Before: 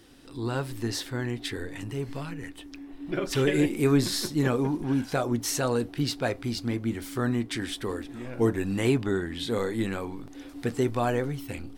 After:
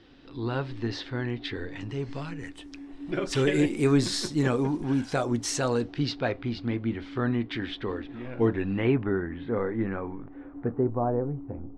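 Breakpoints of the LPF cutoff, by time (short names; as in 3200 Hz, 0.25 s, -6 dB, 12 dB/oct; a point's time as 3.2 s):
LPF 24 dB/oct
1.51 s 4300 Hz
2.62 s 8900 Hz
5.49 s 8900 Hz
6.38 s 3700 Hz
8.58 s 3700 Hz
9.16 s 1900 Hz
10.3 s 1900 Hz
10.94 s 1000 Hz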